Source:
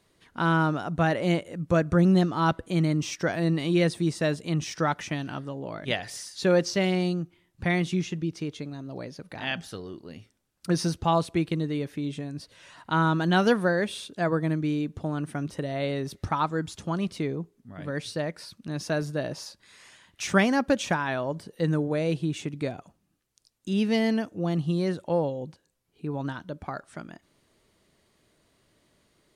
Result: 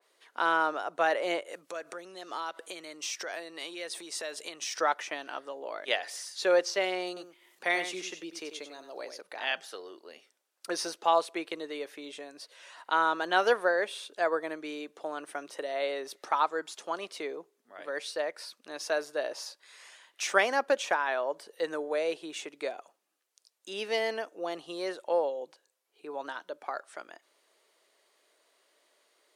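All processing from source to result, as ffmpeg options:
ffmpeg -i in.wav -filter_complex "[0:a]asettb=1/sr,asplit=3[link_01][link_02][link_03];[link_01]atrim=end=1.484[link_04];[link_02]atrim=start=1.48:end=4.81,asetpts=PTS-STARTPTS,afade=type=in:duration=0.004:curve=qsin,afade=type=out:start_time=3.326:duration=0.004:curve=qsin,highshelf=frequency=2100:gain=8,acompressor=threshold=-30dB:ratio=20:attack=3.2:release=140:knee=1:detection=peak[link_05];[link_03]atrim=start=4.806[link_06];[link_04][link_05]acrossfade=duration=0.004:curve1=hsin:curve2=qsin[link_07];[link_07][link_06]acrossfade=duration=0.004:curve1=qsin:curve2=hsin,asettb=1/sr,asplit=3[link_08][link_09][link_10];[link_08]atrim=end=7.074[link_11];[link_09]atrim=start=7.07:end=9.21,asetpts=PTS-STARTPTS,afade=type=in:duration=0.004:curve=qsin,afade=type=out:start_time=2.136:duration=0.004:curve=qsin,highshelf=frequency=5400:gain=6.5,aecho=1:1:94:0.335,atrim=end_sample=94374,acompressor=mode=upward:threshold=-47dB:ratio=2.5:attack=3.2:release=140:knee=2.83:detection=peak[link_12];[link_10]atrim=start=9.206[link_13];[link_11][link_12]acrossfade=duration=0.004:curve1=hsin:curve2=qsin[link_14];[link_14][link_13]acrossfade=duration=0.004:curve1=qsin:curve2=hsin,highpass=frequency=440:width=0.5412,highpass=frequency=440:width=1.3066,adynamicequalizer=threshold=0.00891:dfrequency=2700:dqfactor=0.7:tfrequency=2700:tqfactor=0.7:attack=5:release=100:ratio=0.375:range=2.5:mode=cutabove:tftype=highshelf" out.wav

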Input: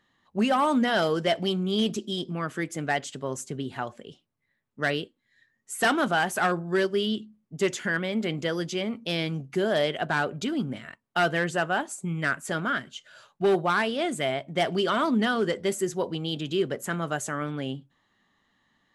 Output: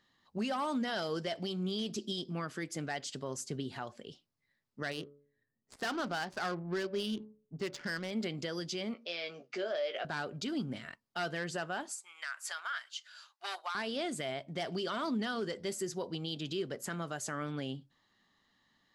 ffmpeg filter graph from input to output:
ffmpeg -i in.wav -filter_complex "[0:a]asettb=1/sr,asplit=3[link_01][link_02][link_03];[link_01]atrim=end=4.914[link_04];[link_02]atrim=start=4.91:end=8.11,asetpts=PTS-STARTPTS,afade=type=in:duration=0.004:curve=qsin,afade=type=out:start_time=3.196:duration=0.004:curve=qsin,highshelf=frequency=5500:gain=5.5,bandreject=frequency=143.3:width_type=h:width=4,bandreject=frequency=286.6:width_type=h:width=4,bandreject=frequency=429.9:width_type=h:width=4,bandreject=frequency=573.2:width_type=h:width=4,adynamicsmooth=sensitivity=4.5:basefreq=740[link_05];[link_03]atrim=start=8.106[link_06];[link_04][link_05]acrossfade=duration=0.004:curve1=hsin:curve2=qsin[link_07];[link_07][link_06]acrossfade=duration=0.004:curve1=qsin:curve2=hsin,asettb=1/sr,asplit=3[link_08][link_09][link_10];[link_08]atrim=end=8.944[link_11];[link_09]atrim=start=8.94:end=10.05,asetpts=PTS-STARTPTS,afade=type=in:duration=0.004:curve=qsin,afade=type=out:start_time=1.106:duration=0.004:curve=qsin,acompressor=threshold=-28dB:ratio=2.5:attack=3.2:release=140:knee=1:detection=peak,highpass=frequency=290:width=0.5412,highpass=frequency=290:width=1.3066,equalizer=frequency=300:width_type=q:width=4:gain=-9,equalizer=frequency=580:width_type=q:width=4:gain=8,equalizer=frequency=930:width_type=q:width=4:gain=-5,equalizer=frequency=1300:width_type=q:width=4:gain=4,equalizer=frequency=2400:width_type=q:width=4:gain=5,equalizer=frequency=4300:width_type=q:width=4:gain=-3,lowpass=frequency=6000:width=0.5412,lowpass=frequency=6000:width=1.3066,asplit=2[link_12][link_13];[link_13]adelay=17,volume=-7dB[link_14];[link_12][link_14]amix=inputs=2:normalize=0,atrim=end_sample=48951[link_15];[link_10]atrim=start=10.046[link_16];[link_11][link_15]acrossfade=duration=0.004:curve1=hsin:curve2=qsin[link_17];[link_17][link_16]acrossfade=duration=0.004:curve1=qsin:curve2=hsin,asettb=1/sr,asplit=3[link_18][link_19][link_20];[link_18]atrim=end=11.914[link_21];[link_19]atrim=start=11.91:end=13.75,asetpts=PTS-STARTPTS,afade=type=in:duration=0.004:curve=qsin,afade=type=out:start_time=1.836:duration=0.004:curve=qsin,highpass=frequency=930:width=0.5412,highpass=frequency=930:width=1.3066,acompressor=threshold=-29dB:ratio=3:attack=3.2:release=140:knee=1:detection=peak[link_22];[link_20]atrim=start=13.746[link_23];[link_21][link_22]acrossfade=duration=0.004:curve1=hsin:curve2=qsin[link_24];[link_24][link_23]acrossfade=duration=0.004:curve1=qsin:curve2=hsin,equalizer=frequency=4800:width_type=o:width=0.6:gain=10,alimiter=limit=-22.5dB:level=0:latency=1:release=210,volume=-4.5dB" out.wav

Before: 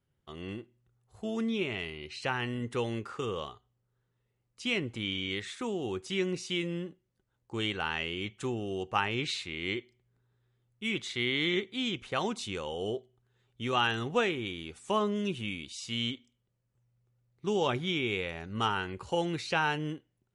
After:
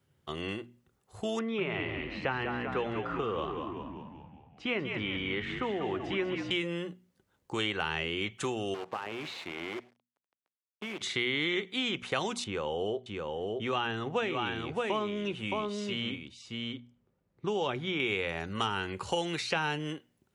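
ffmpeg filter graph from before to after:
ffmpeg -i in.wav -filter_complex "[0:a]asettb=1/sr,asplit=3[link_01][link_02][link_03];[link_01]atrim=end=1.394[link_04];[link_02]atrim=start=1.39:end=6.51,asetpts=PTS-STARTPTS,afade=type=in:duration=0.004:curve=qsin,afade=type=out:start_time=5.116:duration=0.004:curve=qsin,lowpass=1700,asplit=8[link_05][link_06][link_07][link_08][link_09][link_10][link_11][link_12];[link_06]adelay=191,afreqshift=-59,volume=-7dB[link_13];[link_07]adelay=382,afreqshift=-118,volume=-11.7dB[link_14];[link_08]adelay=573,afreqshift=-177,volume=-16.5dB[link_15];[link_09]adelay=764,afreqshift=-236,volume=-21.2dB[link_16];[link_10]adelay=955,afreqshift=-295,volume=-25.9dB[link_17];[link_11]adelay=1146,afreqshift=-354,volume=-30.7dB[link_18];[link_12]adelay=1337,afreqshift=-413,volume=-35.4dB[link_19];[link_05][link_13][link_14][link_15][link_16][link_17][link_18][link_19]amix=inputs=8:normalize=0,atrim=end_sample=225792[link_20];[link_03]atrim=start=6.506[link_21];[link_04][link_20]acrossfade=duration=0.004:curve1=hsin:curve2=qsin[link_22];[link_22][link_21]acrossfade=duration=0.004:curve1=qsin:curve2=hsin,asettb=1/sr,asplit=3[link_23][link_24][link_25];[link_23]atrim=end=8.744[link_26];[link_24]atrim=start=8.74:end=11.01,asetpts=PTS-STARTPTS,afade=type=in:duration=0.004:curve=qsin,afade=type=out:start_time=2.266:duration=0.004:curve=qsin,acompressor=threshold=-36dB:ratio=20:attack=3.2:release=140:knee=1:detection=peak,acrusher=bits=8:dc=4:mix=0:aa=0.000001,bandpass=frequency=710:width_type=q:width=0.6[link_27];[link_25]atrim=start=11.006[link_28];[link_26][link_27]acrossfade=duration=0.004:curve1=hsin:curve2=qsin[link_29];[link_29][link_28]acrossfade=duration=0.004:curve1=qsin:curve2=hsin,asettb=1/sr,asplit=3[link_30][link_31][link_32];[link_30]atrim=end=12.444[link_33];[link_31]atrim=start=12.44:end=18,asetpts=PTS-STARTPTS,afade=type=in:duration=0.004:curve=qsin,afade=type=out:start_time=5.556:duration=0.004:curve=qsin,lowpass=frequency=1200:poles=1,aecho=1:1:619:0.531,atrim=end_sample=245196[link_34];[link_32]atrim=start=17.996[link_35];[link_33][link_34]acrossfade=duration=0.004:curve1=hsin:curve2=qsin[link_36];[link_36][link_35]acrossfade=duration=0.004:curve1=qsin:curve2=hsin,highpass=72,bandreject=frequency=60:width_type=h:width=6,bandreject=frequency=120:width_type=h:width=6,bandreject=frequency=180:width_type=h:width=6,bandreject=frequency=240:width_type=h:width=6,acrossover=split=510|2200[link_37][link_38][link_39];[link_37]acompressor=threshold=-46dB:ratio=4[link_40];[link_38]acompressor=threshold=-42dB:ratio=4[link_41];[link_39]acompressor=threshold=-45dB:ratio=4[link_42];[link_40][link_41][link_42]amix=inputs=3:normalize=0,volume=8.5dB" out.wav

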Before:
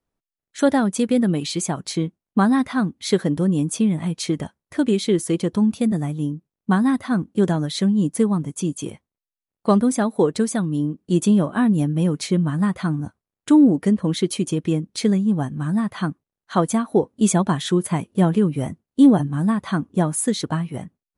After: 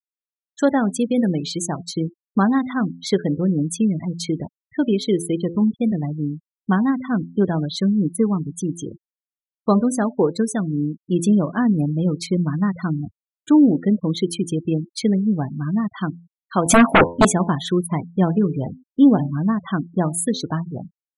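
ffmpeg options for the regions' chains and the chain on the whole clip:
ffmpeg -i in.wav -filter_complex "[0:a]asettb=1/sr,asplit=3[link_01][link_02][link_03];[link_01]atrim=end=16.664[link_04];[link_02]atrim=start=16.66:end=17.25,asetpts=PTS-STARTPTS,afade=type=in:duration=0.004:curve=qsin,afade=type=out:start_time=0.586:duration=0.004:curve=qsin,aeval=exprs='0.473*sin(PI/2*4.47*val(0)/0.473)':channel_layout=same,adynamicequalizer=threshold=0.0316:dfrequency=3600:dqfactor=0.7:tfrequency=3600:tqfactor=0.7:attack=5:release=100:ratio=0.375:range=3.5:mode=cutabove:tftype=highshelf[link_05];[link_03]atrim=start=17.246[link_06];[link_04][link_05]acrossfade=duration=0.004:curve1=hsin:curve2=qsin[link_07];[link_07][link_06]acrossfade=duration=0.004:curve1=qsin:curve2=hsin,bandreject=frequency=85.22:width_type=h:width=4,bandreject=frequency=170.44:width_type=h:width=4,bandreject=frequency=255.66:width_type=h:width=4,bandreject=frequency=340.88:width_type=h:width=4,bandreject=frequency=426.1:width_type=h:width=4,bandreject=frequency=511.32:width_type=h:width=4,bandreject=frequency=596.54:width_type=h:width=4,bandreject=frequency=681.76:width_type=h:width=4,bandreject=frequency=766.98:width_type=h:width=4,bandreject=frequency=852.2:width_type=h:width=4,bandreject=frequency=937.42:width_type=h:width=4,bandreject=frequency=1022.64:width_type=h:width=4,afftfilt=real='re*gte(hypot(re,im),0.0447)':imag='im*gte(hypot(re,im),0.0447)':win_size=1024:overlap=0.75" out.wav

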